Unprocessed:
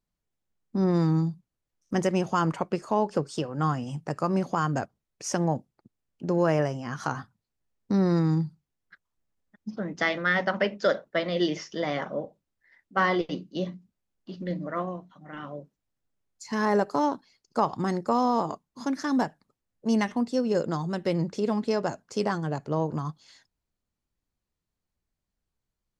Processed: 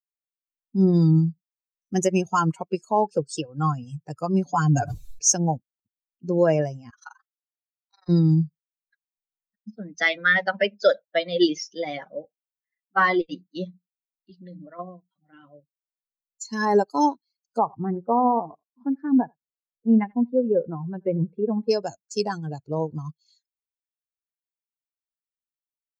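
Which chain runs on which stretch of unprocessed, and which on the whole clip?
0:04.45–0:05.29: low-pass filter 8,000 Hz + comb filter 6.9 ms, depth 62% + level that may fall only so fast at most 45 dB per second
0:06.90–0:08.09: high-pass filter 870 Hz 24 dB per octave + high-shelf EQ 5,200 Hz −9 dB + amplitude modulation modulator 23 Hz, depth 95%
0:14.30–0:14.79: high-pass filter 110 Hz + downward compressor 5 to 1, threshold −30 dBFS
0:17.58–0:21.69: Bessel low-pass filter 1,600 Hz, order 4 + single-tap delay 84 ms −16.5 dB
whole clip: spectral dynamics exaggerated over time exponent 2; parametric band 6,400 Hz +12 dB 0.34 octaves; notch filter 1,200 Hz, Q 10; level +8.5 dB

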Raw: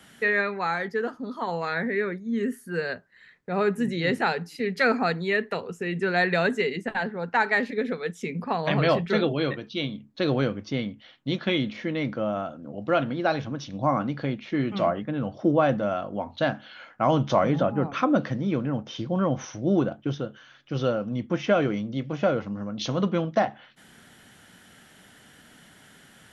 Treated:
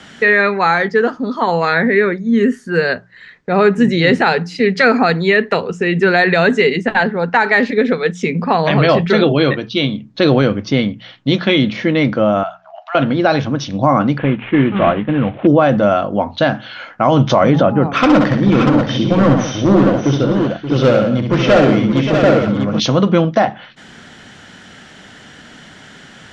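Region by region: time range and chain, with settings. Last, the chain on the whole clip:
0:12.43–0:12.95: high-frequency loss of the air 80 metres + downward compressor 4 to 1, threshold −30 dBFS + linear-phase brick-wall high-pass 620 Hz
0:14.18–0:15.47: variable-slope delta modulation 16 kbit/s + parametric band 630 Hz −4 dB 0.33 octaves
0:17.88–0:22.80: low-pass filter 6,000 Hz + hard clipping −21.5 dBFS + multi-tap delay 66/120/178/578/640 ms −5/−14.5/−12/−11/−6 dB
whole clip: low-pass filter 6,800 Hz 24 dB per octave; hum removal 59.77 Hz, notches 3; boost into a limiter +15 dB; level −1 dB

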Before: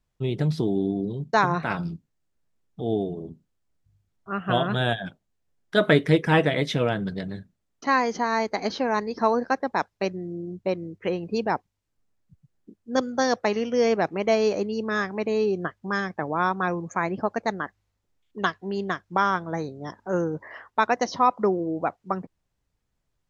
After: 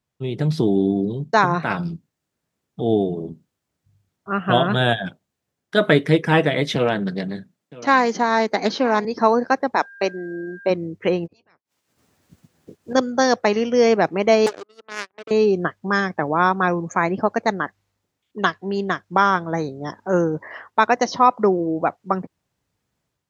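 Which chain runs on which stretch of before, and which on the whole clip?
0:06.75–0:09.05: high-pass filter 130 Hz 24 dB per octave + single-tap delay 966 ms −20.5 dB + highs frequency-modulated by the lows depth 0.22 ms
0:09.75–0:10.69: high-pass filter 290 Hz + steady tone 1,600 Hz −46 dBFS
0:11.25–0:12.93: ceiling on every frequency bin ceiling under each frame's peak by 21 dB + gate with flip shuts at −25 dBFS, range −42 dB + double-tracking delay 12 ms −10 dB
0:14.46–0:15.31: Butterworth high-pass 260 Hz 72 dB per octave + power curve on the samples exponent 3 + highs frequency-modulated by the lows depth 0.47 ms
whole clip: high-pass filter 100 Hz; automatic gain control gain up to 7 dB

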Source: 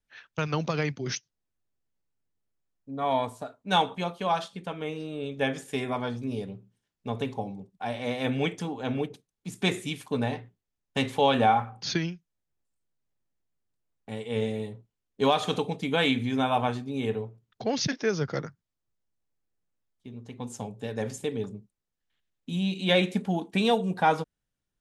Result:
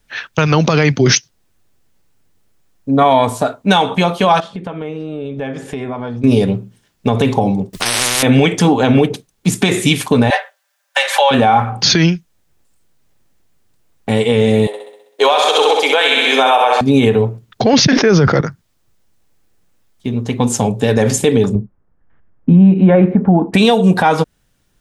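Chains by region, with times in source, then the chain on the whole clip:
0:04.40–0:06.24: low-pass filter 1,300 Hz 6 dB per octave + downward compressor 4 to 1, threshold −47 dBFS
0:07.73–0:08.23: downward compressor 12 to 1, threshold −33 dBFS + every bin compressed towards the loudest bin 10 to 1
0:10.30–0:11.31: Butterworth high-pass 510 Hz 96 dB per octave + parametric band 1,600 Hz +10 dB 0.32 octaves + comb filter 5.1 ms, depth 83%
0:14.67–0:16.81: inverse Chebyshev high-pass filter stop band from 170 Hz, stop band 50 dB + flutter between parallel walls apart 11.1 metres, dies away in 0.8 s
0:17.73–0:18.41: low-pass filter 2,600 Hz 6 dB per octave + envelope flattener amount 100%
0:21.55–0:23.54: low-pass filter 1,500 Hz 24 dB per octave + low-shelf EQ 180 Hz +7 dB
whole clip: downward compressor, threshold −28 dBFS; boost into a limiter +24.5 dB; level −1 dB

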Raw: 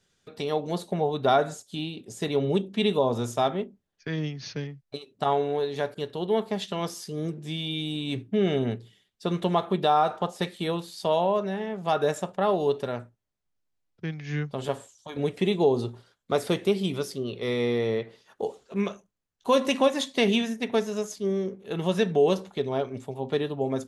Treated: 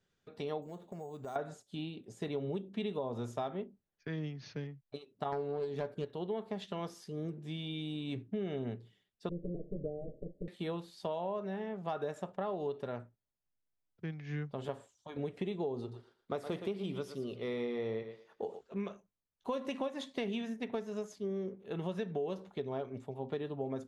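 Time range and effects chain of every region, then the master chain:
0:00.62–0:01.36: downward compressor 3 to 1, threshold −37 dBFS + bad sample-rate conversion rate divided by 6×, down filtered, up hold
0:05.32–0:06.05: phase distortion by the signal itself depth 0.18 ms + low-shelf EQ 460 Hz +7 dB + double-tracking delay 12 ms −13 dB
0:09.29–0:10.48: lower of the sound and its delayed copy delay 6.7 ms + Butterworth low-pass 570 Hz 72 dB per octave
0:15.80–0:18.61: mains-hum notches 60/120/180 Hz + feedback echo with a high-pass in the loop 116 ms, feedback 28%, high-pass 380 Hz, level −10 dB
whole clip: high-shelf EQ 3,900 Hz −12 dB; downward compressor, threshold −26 dBFS; level −7 dB

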